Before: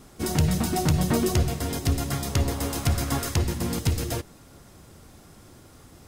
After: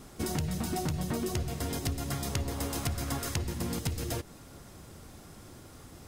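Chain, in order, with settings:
downward compressor 5 to 1, threshold −30 dBFS, peak gain reduction 12 dB

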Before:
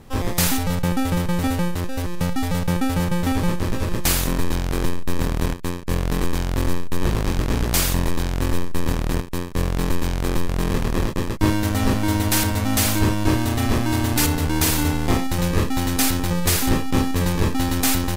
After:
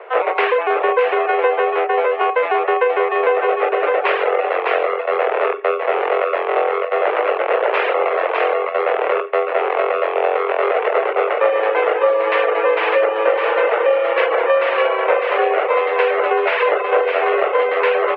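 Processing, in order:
in parallel at +2 dB: soft clipping −19.5 dBFS, distortion −12 dB
on the sum: single-tap delay 605 ms −4.5 dB
single-sideband voice off tune +230 Hz 210–2,400 Hz
on a send at −10 dB: convolution reverb RT60 0.75 s, pre-delay 42 ms
on the sum: downward compressor, threshold −18 dBFS, peak gain reduction 7.5 dB
reverb reduction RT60 0.55 s
level +7 dB

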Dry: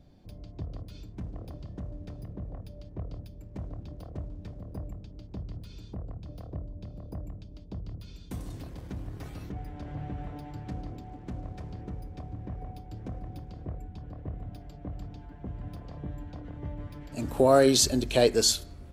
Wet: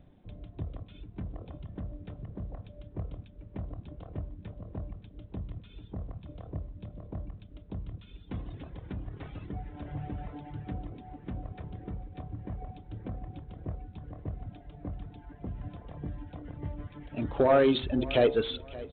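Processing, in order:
reverb reduction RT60 0.89 s
hum removal 64.98 Hz, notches 24
soft clipping −15.5 dBFS, distortion −16 dB
repeating echo 574 ms, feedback 28%, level −19 dB
level +1.5 dB
G.726 40 kbit/s 8,000 Hz

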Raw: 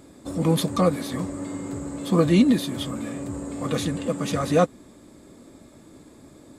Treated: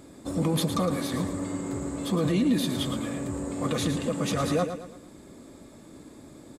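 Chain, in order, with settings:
brickwall limiter −17.5 dBFS, peak gain reduction 10.5 dB
on a send: repeating echo 112 ms, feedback 39%, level −9 dB

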